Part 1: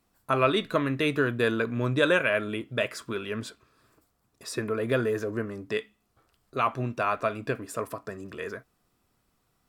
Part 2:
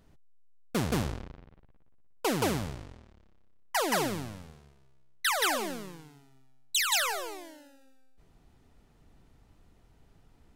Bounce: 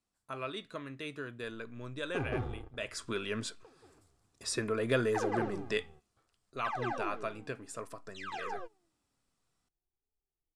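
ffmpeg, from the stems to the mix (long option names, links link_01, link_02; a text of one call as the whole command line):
ffmpeg -i stem1.wav -i stem2.wav -filter_complex "[0:a]volume=-4dB,afade=type=in:start_time=2.75:duration=0.37:silence=0.223872,afade=type=out:start_time=5.72:duration=0.58:silence=0.446684,asplit=2[link_01][link_02];[1:a]flanger=delay=4.6:depth=7.4:regen=43:speed=0.23:shape=triangular,lowpass=1000,aecho=1:1:2.5:0.76,adelay=1400,volume=-2.5dB[link_03];[link_02]apad=whole_len=527209[link_04];[link_03][link_04]sidechaingate=range=-29dB:threshold=-57dB:ratio=16:detection=peak[link_05];[link_01][link_05]amix=inputs=2:normalize=0,lowpass=frequency=9500:width=0.5412,lowpass=frequency=9500:width=1.3066,highshelf=frequency=3500:gain=8.5" out.wav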